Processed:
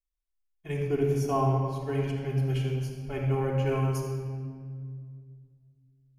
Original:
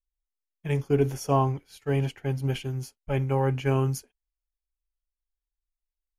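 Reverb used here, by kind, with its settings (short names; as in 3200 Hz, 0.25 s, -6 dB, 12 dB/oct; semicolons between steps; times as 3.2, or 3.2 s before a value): shoebox room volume 3600 m³, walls mixed, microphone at 3.3 m; gain -7.5 dB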